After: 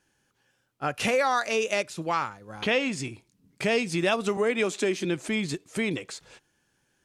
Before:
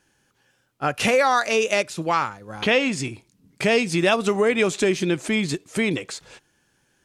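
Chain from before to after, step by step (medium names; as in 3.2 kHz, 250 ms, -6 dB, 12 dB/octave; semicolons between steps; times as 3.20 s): 4.37–5.05 s: steep high-pass 190 Hz; trim -5.5 dB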